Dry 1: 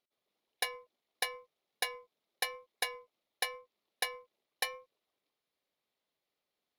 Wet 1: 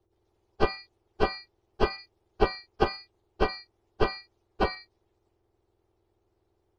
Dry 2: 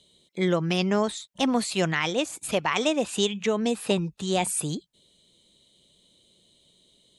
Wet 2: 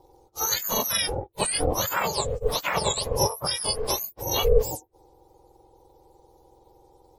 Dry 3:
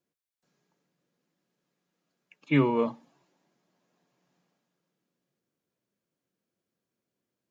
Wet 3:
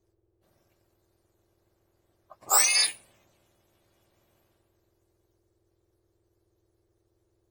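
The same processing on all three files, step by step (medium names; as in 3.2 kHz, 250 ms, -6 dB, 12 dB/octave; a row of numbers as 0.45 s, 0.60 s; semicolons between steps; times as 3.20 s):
spectrum inverted on a logarithmic axis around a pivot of 1.5 kHz; ring modulator 220 Hz; peak normalisation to -6 dBFS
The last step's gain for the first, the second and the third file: +11.0 dB, +5.5 dB, +10.5 dB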